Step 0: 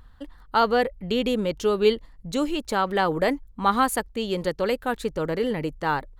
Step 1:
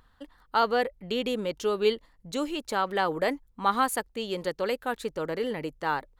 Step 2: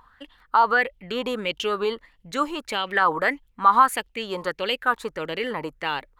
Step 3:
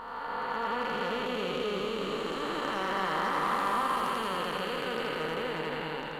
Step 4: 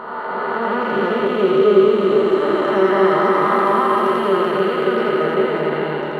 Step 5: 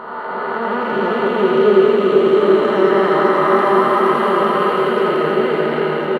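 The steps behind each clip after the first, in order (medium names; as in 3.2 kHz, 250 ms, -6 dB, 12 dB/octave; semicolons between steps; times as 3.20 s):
bass shelf 170 Hz -11.5 dB; trim -3 dB
peak limiter -18 dBFS, peak gain reduction 6.5 dB; sweeping bell 1.6 Hz 970–3100 Hz +18 dB
spectral blur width 976 ms; hard clipper -25.5 dBFS, distortion -19 dB; two-band feedback delay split 720 Hz, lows 271 ms, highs 83 ms, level -3 dB
small resonant body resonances 400/590 Hz, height 16 dB, ringing for 70 ms; reverberation RT60 0.15 s, pre-delay 3 ms, DRR 2 dB
delay 713 ms -3 dB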